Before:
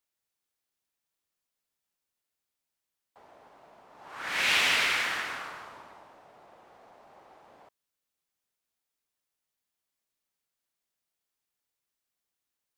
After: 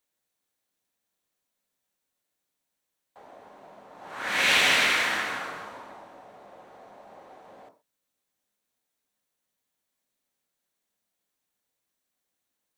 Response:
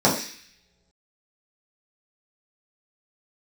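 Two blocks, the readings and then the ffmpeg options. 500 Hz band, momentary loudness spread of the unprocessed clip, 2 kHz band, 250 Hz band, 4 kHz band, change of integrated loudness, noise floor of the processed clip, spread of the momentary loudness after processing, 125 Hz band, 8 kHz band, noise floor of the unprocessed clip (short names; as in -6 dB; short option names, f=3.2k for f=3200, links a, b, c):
+7.0 dB, 18 LU, +4.0 dB, +7.5 dB, +3.5 dB, +3.5 dB, -83 dBFS, 19 LU, +5.5 dB, +4.0 dB, under -85 dBFS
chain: -filter_complex "[0:a]asplit=2[a][b];[1:a]atrim=start_sample=2205,atrim=end_sample=6174[c];[b][c]afir=irnorm=-1:irlink=0,volume=-24.5dB[d];[a][d]amix=inputs=2:normalize=0,volume=3dB"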